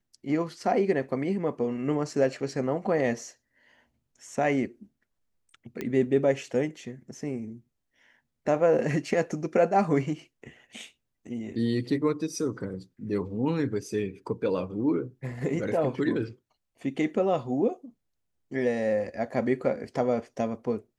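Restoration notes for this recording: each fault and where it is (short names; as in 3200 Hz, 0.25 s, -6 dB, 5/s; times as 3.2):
5.81 pop -19 dBFS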